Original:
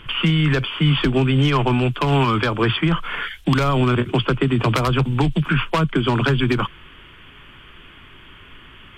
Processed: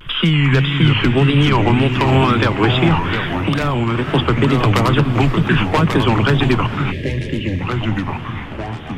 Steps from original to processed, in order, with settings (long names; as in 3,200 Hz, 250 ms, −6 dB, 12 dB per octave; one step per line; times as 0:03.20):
delay with pitch and tempo change per echo 238 ms, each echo −3 semitones, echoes 3, each echo −6 dB
tape wow and flutter 140 cents
on a send: feedback delay with all-pass diffusion 463 ms, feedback 61%, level −14 dB
0:03.14–0:04.09: on the sum: downward compressor 3 to 1, threshold −18 dBFS, peak gain reduction 5 dB
0:06.91–0:07.61: gain on a spectral selection 630–1,600 Hz −23 dB
level +3 dB